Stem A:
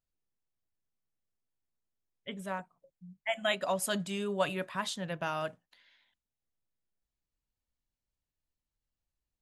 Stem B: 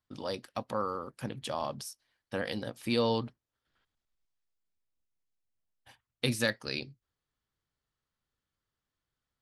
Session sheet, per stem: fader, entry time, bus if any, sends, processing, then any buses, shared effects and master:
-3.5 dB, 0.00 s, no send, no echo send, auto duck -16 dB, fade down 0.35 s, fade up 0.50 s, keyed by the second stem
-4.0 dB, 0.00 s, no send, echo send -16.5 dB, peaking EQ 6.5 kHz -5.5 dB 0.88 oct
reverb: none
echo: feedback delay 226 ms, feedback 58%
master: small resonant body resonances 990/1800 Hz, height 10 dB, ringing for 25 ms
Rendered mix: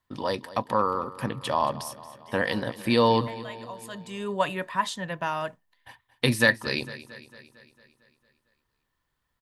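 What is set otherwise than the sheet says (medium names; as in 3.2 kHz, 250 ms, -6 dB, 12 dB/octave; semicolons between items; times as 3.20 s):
stem A -3.5 dB -> +3.0 dB; stem B -4.0 dB -> +7.0 dB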